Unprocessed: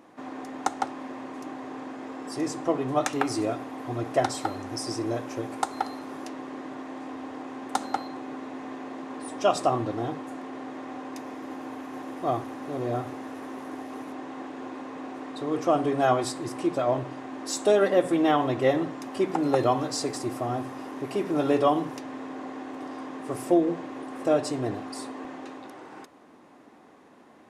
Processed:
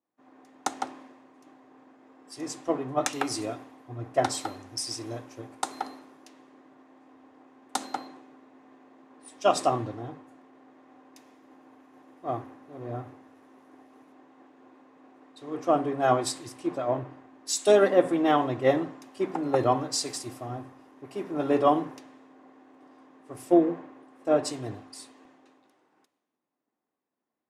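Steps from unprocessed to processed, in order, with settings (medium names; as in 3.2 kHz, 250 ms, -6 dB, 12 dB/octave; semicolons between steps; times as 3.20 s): three bands expanded up and down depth 100%; trim -5.5 dB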